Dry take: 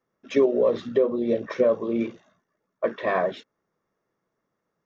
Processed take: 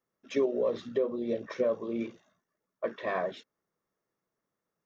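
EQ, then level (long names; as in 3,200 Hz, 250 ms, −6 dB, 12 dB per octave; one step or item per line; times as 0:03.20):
high-shelf EQ 4,800 Hz +7.5 dB
−8.0 dB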